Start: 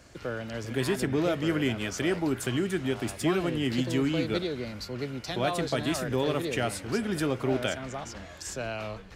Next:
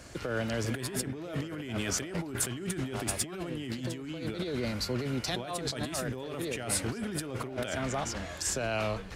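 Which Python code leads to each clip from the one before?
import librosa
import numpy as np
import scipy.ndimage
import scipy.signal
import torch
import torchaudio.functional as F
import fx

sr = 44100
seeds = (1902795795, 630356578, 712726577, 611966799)

y = fx.over_compress(x, sr, threshold_db=-35.0, ratio=-1.0)
y = fx.peak_eq(y, sr, hz=9700.0, db=4.5, octaves=0.71)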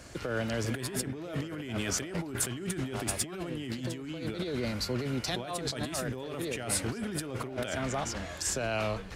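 y = x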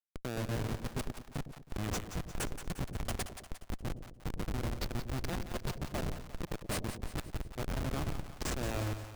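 y = fx.schmitt(x, sr, flips_db=-27.5)
y = fx.echo_split(y, sr, split_hz=610.0, low_ms=105, high_ms=176, feedback_pct=52, wet_db=-9.5)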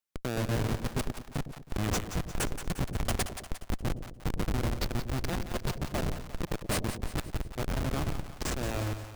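y = fx.rider(x, sr, range_db=10, speed_s=2.0)
y = y * 10.0 ** (4.5 / 20.0)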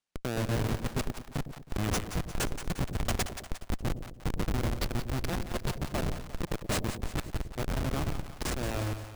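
y = fx.sample_hold(x, sr, seeds[0], rate_hz=16000.0, jitter_pct=0)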